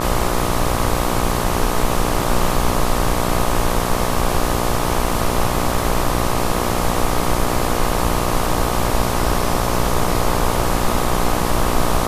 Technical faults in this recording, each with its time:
buzz 60 Hz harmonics 21 -22 dBFS

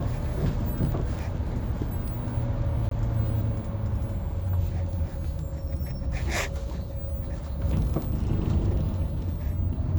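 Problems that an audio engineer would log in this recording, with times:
2.89–2.91 gap 23 ms

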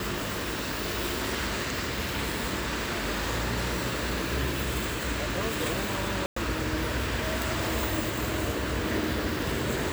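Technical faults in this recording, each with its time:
6.26–6.36 gap 0.104 s

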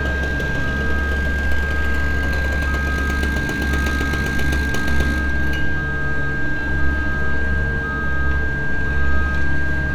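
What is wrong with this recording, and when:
tone 1600 Hz -23 dBFS

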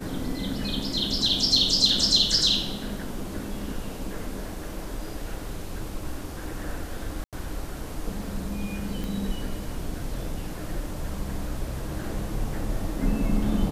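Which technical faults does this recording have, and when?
7.24–7.33 gap 87 ms
9.04 pop

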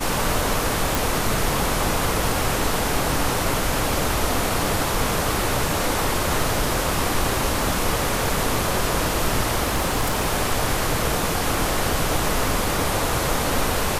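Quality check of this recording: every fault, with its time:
0.95 pop
9.65–10.27 clipped -16.5 dBFS

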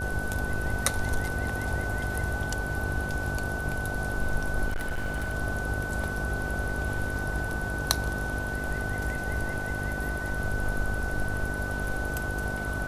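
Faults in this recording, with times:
buzz 50 Hz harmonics 15 -35 dBFS
tone 1500 Hz -33 dBFS
4.68–5.35 clipped -26 dBFS

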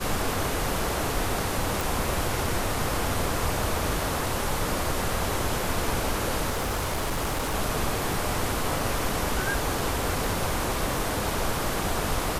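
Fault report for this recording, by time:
1.81 pop
6.49–7.55 clipped -23.5 dBFS

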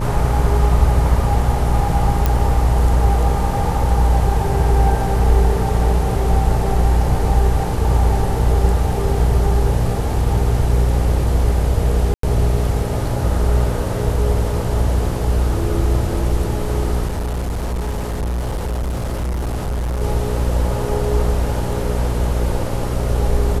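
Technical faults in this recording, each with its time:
buzz 60 Hz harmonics 12 -21 dBFS
2.26 pop
12.14–12.23 gap 93 ms
17.07–20.02 clipped -18.5 dBFS

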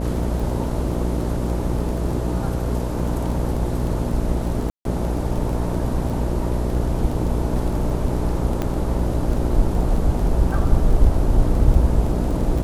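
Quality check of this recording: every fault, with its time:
buzz 60 Hz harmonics 11 -24 dBFS
crackle 12/s -26 dBFS
4.7–4.85 gap 0.152 s
8.62 pop -11 dBFS

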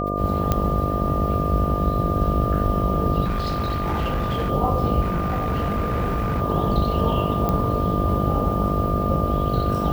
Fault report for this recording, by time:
buzz 50 Hz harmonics 14 -26 dBFS
tone 1200 Hz -26 dBFS
0.52 pop -7 dBFS
3.24–4.51 clipped -20 dBFS
5.01–6.41 clipped -19.5 dBFS
7.49 pop -10 dBFS

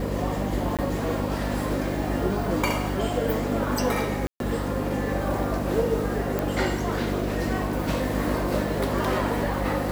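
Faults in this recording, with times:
hum 50 Hz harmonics 6 -30 dBFS
0.77–0.79 gap 17 ms
4.27–4.4 gap 0.132 s
6.39 pop

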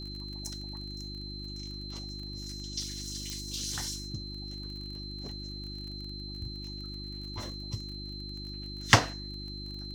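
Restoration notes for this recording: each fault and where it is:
crackle 22/s -40 dBFS
hum 50 Hz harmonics 7 -42 dBFS
tone 4100 Hz -42 dBFS
3.3 pop -22 dBFS

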